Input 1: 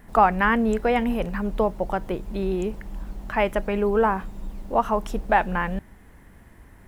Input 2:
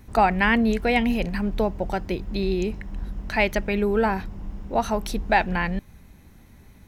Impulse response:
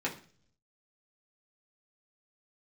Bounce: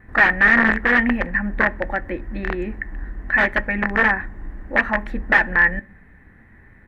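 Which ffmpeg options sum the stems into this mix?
-filter_complex "[0:a]tiltshelf=f=1100:g=8,volume=0.251,asplit=2[s0][s1];[s1]volume=0.211[s2];[1:a]aemphasis=mode=reproduction:type=cd,aeval=exprs='(mod(5.31*val(0)+1,2)-1)/5.31':c=same,lowpass=f=1800:t=q:w=11,adelay=3.1,volume=0.708,asplit=2[s3][s4];[s4]volume=0.112[s5];[2:a]atrim=start_sample=2205[s6];[s2][s5]amix=inputs=2:normalize=0[s7];[s7][s6]afir=irnorm=-1:irlink=0[s8];[s0][s3][s8]amix=inputs=3:normalize=0"

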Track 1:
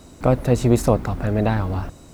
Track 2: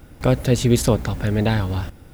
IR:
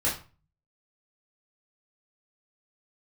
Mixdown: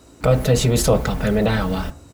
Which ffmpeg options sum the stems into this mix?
-filter_complex "[0:a]highpass=f=120:p=1,volume=0.596,asplit=3[s0][s1][s2];[s1]volume=0.266[s3];[1:a]aecho=1:1:4.6:0.82,alimiter=limit=0.237:level=0:latency=1:release=27,adelay=1.4,volume=1.19[s4];[s2]apad=whole_len=94355[s5];[s4][s5]sidechaingate=range=0.0224:threshold=0.0126:ratio=16:detection=peak[s6];[2:a]atrim=start_sample=2205[s7];[s3][s7]afir=irnorm=-1:irlink=0[s8];[s0][s6][s8]amix=inputs=3:normalize=0"

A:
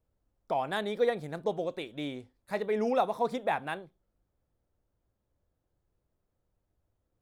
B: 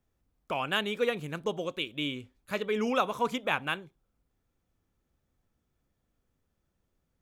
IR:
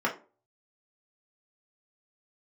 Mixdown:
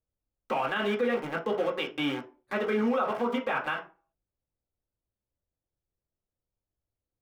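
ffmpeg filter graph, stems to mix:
-filter_complex "[0:a]acompressor=threshold=0.0251:ratio=6,volume=0.266,asplit=2[s0][s1];[1:a]aeval=exprs='val(0)*gte(abs(val(0)),0.0168)':c=same,volume=-1,volume=1,asplit=2[s2][s3];[s3]volume=0.562[s4];[s1]apad=whole_len=318288[s5];[s2][s5]sidechaincompress=threshold=0.00316:ratio=8:attack=16:release=339[s6];[2:a]atrim=start_sample=2205[s7];[s4][s7]afir=irnorm=-1:irlink=0[s8];[s0][s6][s8]amix=inputs=3:normalize=0,lowpass=f=2500:p=1,alimiter=limit=0.112:level=0:latency=1:release=69"

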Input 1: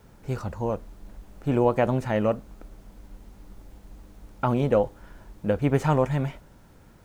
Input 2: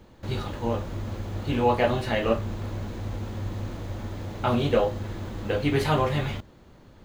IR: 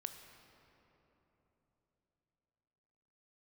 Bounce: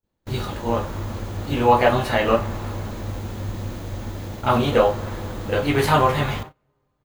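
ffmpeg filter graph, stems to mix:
-filter_complex "[0:a]volume=0.335[s0];[1:a]adynamicequalizer=threshold=0.0126:dfrequency=1100:dqfactor=0.95:tfrequency=1100:tqfactor=0.95:attack=5:release=100:ratio=0.375:range=3.5:mode=boostabove:tftype=bell,volume=-1,adelay=26,volume=1,asplit=2[s1][s2];[s2]volume=0.562[s3];[2:a]atrim=start_sample=2205[s4];[s3][s4]afir=irnorm=-1:irlink=0[s5];[s0][s1][s5]amix=inputs=3:normalize=0,agate=range=0.0398:threshold=0.0224:ratio=16:detection=peak,highshelf=f=7700:g=10.5"

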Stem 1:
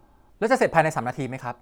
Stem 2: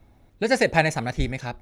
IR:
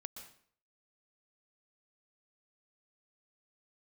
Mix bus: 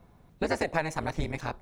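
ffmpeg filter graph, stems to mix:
-filter_complex "[0:a]aeval=exprs='val(0)*sin(2*PI*160*n/s)':c=same,volume=0.75[s0];[1:a]volume=-1,volume=0.596[s1];[s0][s1]amix=inputs=2:normalize=0,acompressor=threshold=0.0562:ratio=4"

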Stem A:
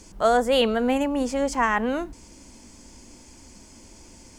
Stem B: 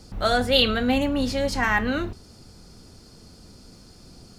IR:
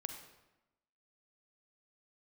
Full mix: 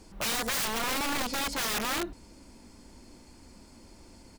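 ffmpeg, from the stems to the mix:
-filter_complex "[0:a]equalizer=f=5400:t=o:w=1.1:g=-15,volume=0.668[s0];[1:a]highpass=f=560:p=1,aecho=1:1:5.1:0.48,volume=0.335[s1];[s0][s1]amix=inputs=2:normalize=0,aeval=exprs='(mod(17.8*val(0)+1,2)-1)/17.8':c=same"

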